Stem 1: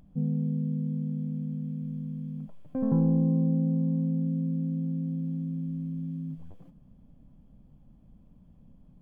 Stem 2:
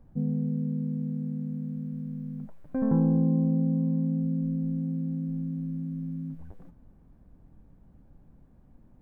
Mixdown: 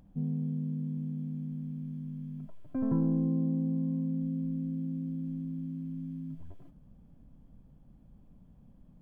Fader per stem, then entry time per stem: -2.5 dB, -8.5 dB; 0.00 s, 0.00 s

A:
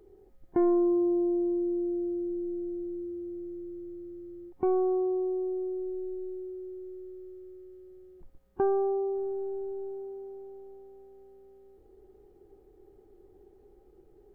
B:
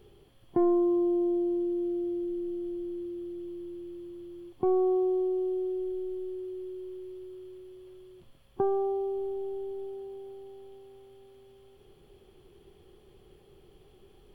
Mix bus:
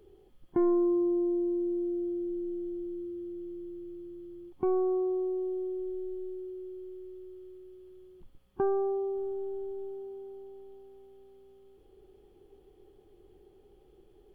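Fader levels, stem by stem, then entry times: -2.0 dB, -11.0 dB; 0.00 s, 0.00 s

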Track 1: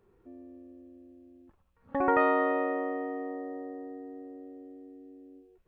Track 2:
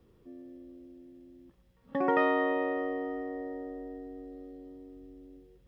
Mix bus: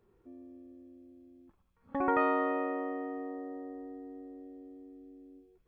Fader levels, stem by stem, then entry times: -3.5 dB, -15.5 dB; 0.00 s, 0.00 s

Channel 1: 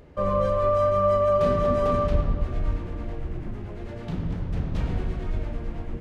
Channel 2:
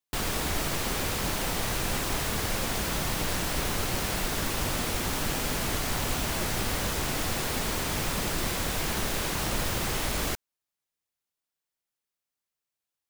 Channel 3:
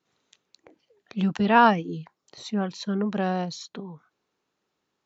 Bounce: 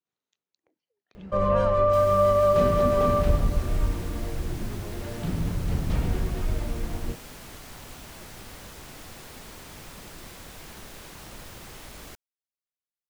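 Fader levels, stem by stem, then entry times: +1.0 dB, -14.0 dB, -19.5 dB; 1.15 s, 1.80 s, 0.00 s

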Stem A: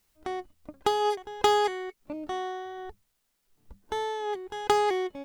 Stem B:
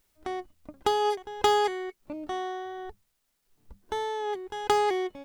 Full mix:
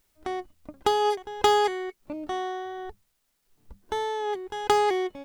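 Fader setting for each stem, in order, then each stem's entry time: -16.0 dB, +1.0 dB; 0.00 s, 0.00 s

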